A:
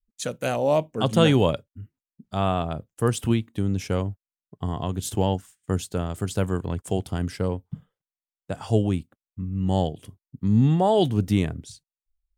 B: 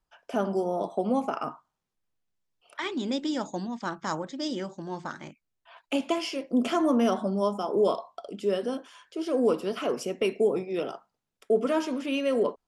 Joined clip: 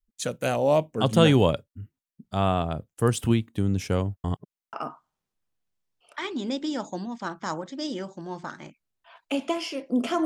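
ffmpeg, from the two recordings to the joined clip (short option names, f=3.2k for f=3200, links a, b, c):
-filter_complex "[0:a]apad=whole_dur=10.25,atrim=end=10.25,asplit=2[a][b];[a]atrim=end=4.242[c];[b]atrim=start=4.238:end=4.732,asetpts=PTS-STARTPTS,areverse[d];[1:a]atrim=start=1.338:end=6.86[e];[c][d]acrossfade=d=0.004:c1=hsin:c2=hsin[f];[f][e]acrossfade=d=0.004:c1=hsin:c2=hsin"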